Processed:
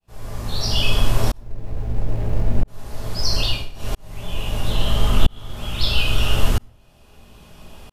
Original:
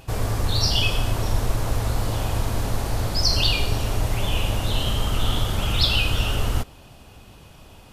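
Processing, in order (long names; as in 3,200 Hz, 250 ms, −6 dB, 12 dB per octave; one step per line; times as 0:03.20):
0:01.37–0:02.68: running median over 41 samples
0:03.37–0:04.04: duck −23.5 dB, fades 0.30 s
0:04.72–0:05.57: bass and treble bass 0 dB, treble −3 dB
convolution reverb RT60 0.45 s, pre-delay 5 ms, DRR 1 dB
shaped tremolo saw up 0.76 Hz, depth 100%
level +2 dB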